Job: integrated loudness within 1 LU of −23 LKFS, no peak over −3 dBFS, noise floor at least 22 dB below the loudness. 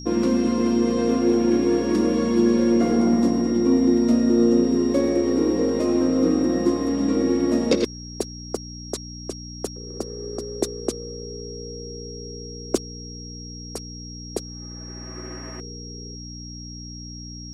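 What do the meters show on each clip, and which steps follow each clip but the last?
mains hum 60 Hz; hum harmonics up to 300 Hz; level of the hum −35 dBFS; interfering tone 5,600 Hz; level of the tone −39 dBFS; integrated loudness −21.5 LKFS; sample peak −7.0 dBFS; target loudness −23.0 LKFS
→ hum removal 60 Hz, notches 5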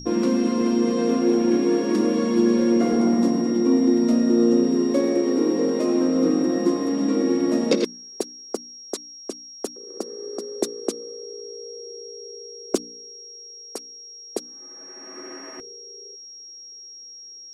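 mains hum none found; interfering tone 5,600 Hz; level of the tone −39 dBFS
→ notch filter 5,600 Hz, Q 30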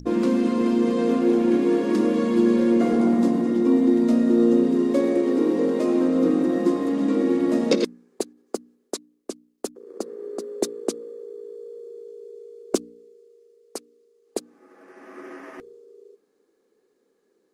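interfering tone none found; integrated loudness −21.0 LKFS; sample peak −7.0 dBFS; target loudness −23.0 LKFS
→ level −2 dB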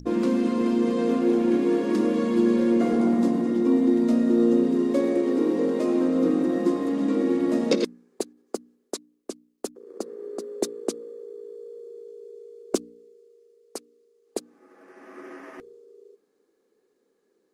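integrated loudness −23.0 LKFS; sample peak −9.0 dBFS; background noise floor −71 dBFS

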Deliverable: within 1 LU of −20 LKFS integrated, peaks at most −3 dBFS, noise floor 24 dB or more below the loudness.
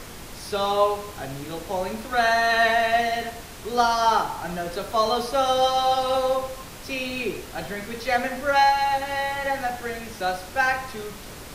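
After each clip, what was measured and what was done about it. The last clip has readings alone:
background noise floor −40 dBFS; target noise floor −48 dBFS; integrated loudness −23.5 LKFS; sample peak −7.0 dBFS; target loudness −20.0 LKFS
→ noise reduction from a noise print 8 dB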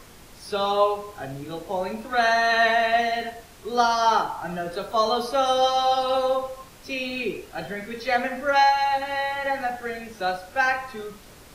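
background noise floor −48 dBFS; integrated loudness −23.5 LKFS; sample peak −7.0 dBFS; target loudness −20.0 LKFS
→ level +3.5 dB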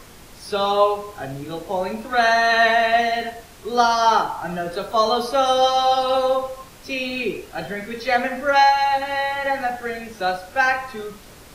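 integrated loudness −20.0 LKFS; sample peak −3.5 dBFS; background noise floor −44 dBFS

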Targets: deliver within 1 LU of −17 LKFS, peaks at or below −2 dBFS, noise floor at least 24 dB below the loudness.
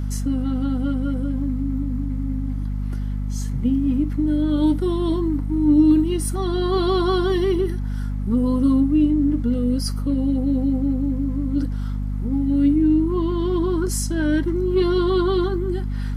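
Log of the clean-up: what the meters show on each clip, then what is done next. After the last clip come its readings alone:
crackle rate 25 per second; mains hum 50 Hz; hum harmonics up to 250 Hz; level of the hum −22 dBFS; integrated loudness −21.5 LKFS; sample peak −6.0 dBFS; target loudness −17.0 LKFS
→ click removal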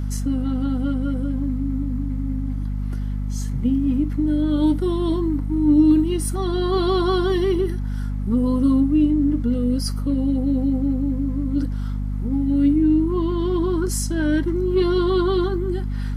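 crackle rate 0.062 per second; mains hum 50 Hz; hum harmonics up to 250 Hz; level of the hum −22 dBFS
→ hum removal 50 Hz, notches 5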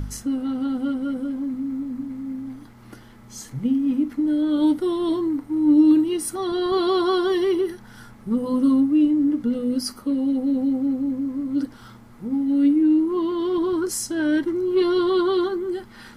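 mains hum none found; integrated loudness −22.0 LKFS; sample peak −8.0 dBFS; target loudness −17.0 LKFS
→ level +5 dB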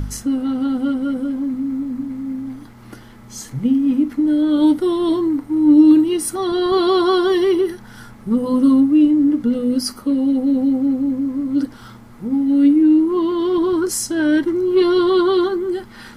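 integrated loudness −17.0 LKFS; sample peak −3.0 dBFS; background noise floor −41 dBFS

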